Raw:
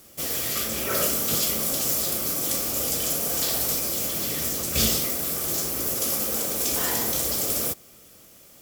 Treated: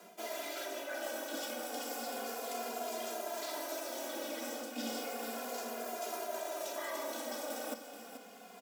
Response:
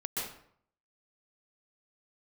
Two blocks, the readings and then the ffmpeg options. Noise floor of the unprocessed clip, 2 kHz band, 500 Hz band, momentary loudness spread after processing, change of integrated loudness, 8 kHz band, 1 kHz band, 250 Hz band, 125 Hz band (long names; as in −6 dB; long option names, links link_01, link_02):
−51 dBFS, −8.5 dB, −6.5 dB, 2 LU, −17.0 dB, −20.0 dB, −4.5 dB, −11.0 dB, below −30 dB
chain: -filter_complex "[0:a]lowpass=frequency=1000:poles=1,lowshelf=frequency=460:gain=-6.5,aecho=1:1:2.2:0.39,areverse,acompressor=threshold=-46dB:ratio=6,areverse,afreqshift=170,aecho=1:1:433:0.299,asplit=2[link_01][link_02];[link_02]adelay=2.5,afreqshift=-0.33[link_03];[link_01][link_03]amix=inputs=2:normalize=1,volume=10.5dB"